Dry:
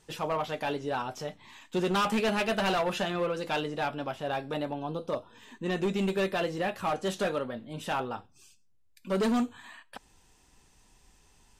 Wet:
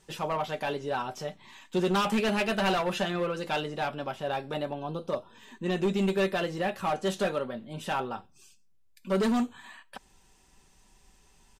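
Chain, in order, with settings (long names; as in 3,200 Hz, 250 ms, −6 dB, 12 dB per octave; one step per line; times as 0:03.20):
comb filter 5.2 ms, depth 30%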